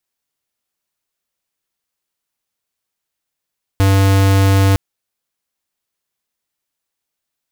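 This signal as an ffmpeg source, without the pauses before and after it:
-f lavfi -i "aevalsrc='0.282*(2*lt(mod(97.4*t,1),0.5)-1)':d=0.96:s=44100"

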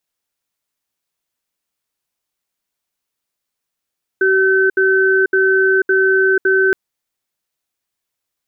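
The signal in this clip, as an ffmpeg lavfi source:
-f lavfi -i "aevalsrc='0.224*(sin(2*PI*382*t)+sin(2*PI*1530*t))*clip(min(mod(t,0.56),0.49-mod(t,0.56))/0.005,0,1)':d=2.52:s=44100"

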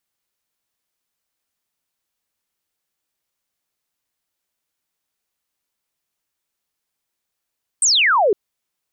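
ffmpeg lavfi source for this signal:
-f lavfi -i "aevalsrc='0.251*clip(t/0.002,0,1)*clip((0.51-t)/0.002,0,1)*sin(2*PI*8800*0.51/log(370/8800)*(exp(log(370/8800)*t/0.51)-1))':d=0.51:s=44100"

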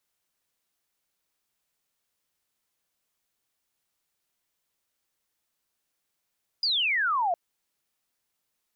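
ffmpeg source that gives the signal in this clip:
-f lavfi -i "aevalsrc='0.075*clip(t/0.002,0,1)*clip((0.71-t)/0.002,0,1)*sin(2*PI*5000*0.71/log(660/5000)*(exp(log(660/5000)*t/0.71)-1))':d=0.71:s=44100"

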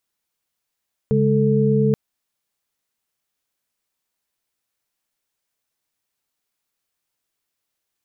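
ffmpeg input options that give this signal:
-f lavfi -i "aevalsrc='0.119*(sin(2*PI*138.59*t)+sin(2*PI*207.65*t)+sin(2*PI*440*t))':d=0.83:s=44100"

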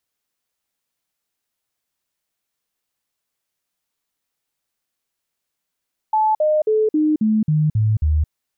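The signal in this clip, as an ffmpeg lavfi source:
-f lavfi -i "aevalsrc='0.211*clip(min(mod(t,0.27),0.22-mod(t,0.27))/0.005,0,1)*sin(2*PI*866*pow(2,-floor(t/0.27)/2)*mod(t,0.27))':d=2.16:s=44100"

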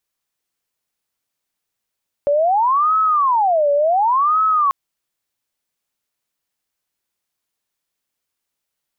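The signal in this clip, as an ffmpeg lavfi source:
-f lavfi -i "aevalsrc='0.237*sin(2*PI*(931*t-359/(2*PI*0.69)*sin(2*PI*0.69*t)))':d=2.44:s=44100"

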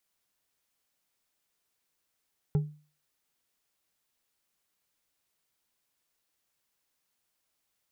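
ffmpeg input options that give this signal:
-f lavfi -i "aevalsrc='0.106*pow(10,-3*t/0.38)*sin(2*PI*150*t)+0.0299*pow(10,-3*t/0.187)*sin(2*PI*413.6*t)+0.00841*pow(10,-3*t/0.117)*sin(2*PI*810.6*t)+0.00237*pow(10,-3*t/0.082)*sin(2*PI*1340*t)+0.000668*pow(10,-3*t/0.062)*sin(2*PI*2001*t)':d=0.89:s=44100"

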